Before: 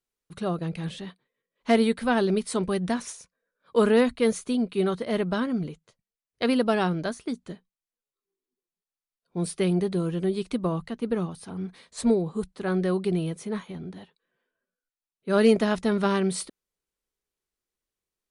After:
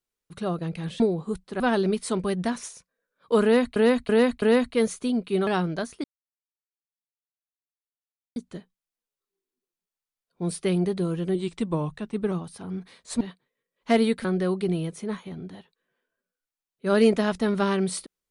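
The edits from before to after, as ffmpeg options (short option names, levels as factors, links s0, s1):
-filter_complex "[0:a]asplit=12[s0][s1][s2][s3][s4][s5][s6][s7][s8][s9][s10][s11];[s0]atrim=end=1.002[s12];[s1]atrim=start=12.078:end=12.682[s13];[s2]atrim=start=2.038:end=4.202[s14];[s3]atrim=start=3.868:end=4.202[s15];[s4]atrim=start=3.868:end=4.202[s16];[s5]atrim=start=3.868:end=4.922[s17];[s6]atrim=start=6.738:end=7.31,asetpts=PTS-STARTPTS,afade=t=out:st=0.568:d=0.004:c=hsin,apad=pad_dur=2.32[s18];[s7]atrim=start=7.31:end=10.304,asetpts=PTS-STARTPTS,afade=t=in:d=0.004:c=hsin[s19];[s8]atrim=start=10.3:end=11.19,asetpts=PTS-STARTPTS,asetrate=40572,aresample=44100[s20];[s9]atrim=start=11.186:end=12.082[s21];[s10]atrim=start=0.998:end=2.042[s22];[s11]atrim=start=12.678[s23];[s12][s13]acrossfade=d=0.004:c1=hsin:c2=hsin[s24];[s24][s14]acrossfade=d=0.004:c1=hsin:c2=hsin[s25];[s25][s15]acrossfade=d=0.004:c1=hsin:c2=hsin[s26];[s26][s16]acrossfade=d=0.004:c1=hsin:c2=hsin[s27];[s27][s17]acrossfade=d=0.004:c1=hsin:c2=hsin[s28];[s18][s19]concat=n=2:v=0:a=1[s29];[s28][s29]acrossfade=d=0.004:c1=hsin:c2=hsin[s30];[s30][s20]acrossfade=d=0.004:c1=hsin:c2=hsin[s31];[s31][s21]acrossfade=d=0.004:c1=hsin:c2=hsin[s32];[s32][s22]acrossfade=d=0.004:c1=hsin:c2=hsin[s33];[s33][s23]acrossfade=d=0.004:c1=hsin:c2=hsin"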